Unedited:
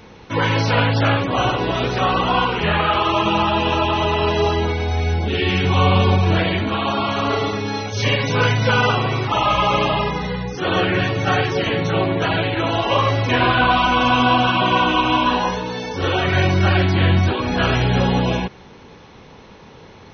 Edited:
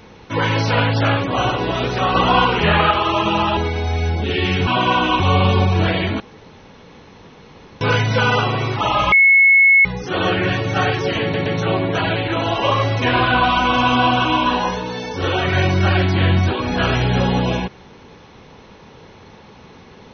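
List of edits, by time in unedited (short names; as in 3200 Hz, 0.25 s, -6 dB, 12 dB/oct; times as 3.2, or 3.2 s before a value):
2.15–2.91 gain +3.5 dB
3.57–4.61 cut
6.71–8.32 room tone
9.63–10.36 bleep 2190 Hz -7.5 dBFS
11.73 stutter 0.12 s, 3 plays
14.52–15.05 move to 5.71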